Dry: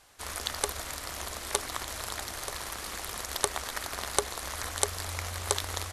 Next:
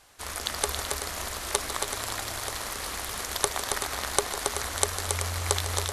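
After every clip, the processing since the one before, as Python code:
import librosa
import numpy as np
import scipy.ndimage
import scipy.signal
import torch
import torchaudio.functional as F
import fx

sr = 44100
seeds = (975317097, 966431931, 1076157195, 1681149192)

y = fx.echo_multitap(x, sr, ms=(152, 275, 380), db=(-12.0, -5.0, -9.5))
y = y * 10.0 ** (2.0 / 20.0)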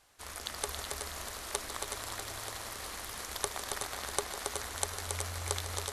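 y = x + 10.0 ** (-7.5 / 20.0) * np.pad(x, (int(371 * sr / 1000.0), 0))[:len(x)]
y = y * 10.0 ** (-8.5 / 20.0)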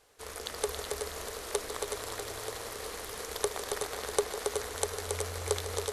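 y = fx.peak_eq(x, sr, hz=450.0, db=14.0, octaves=0.47)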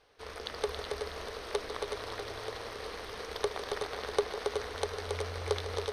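y = scipy.signal.savgol_filter(x, 15, 4, mode='constant')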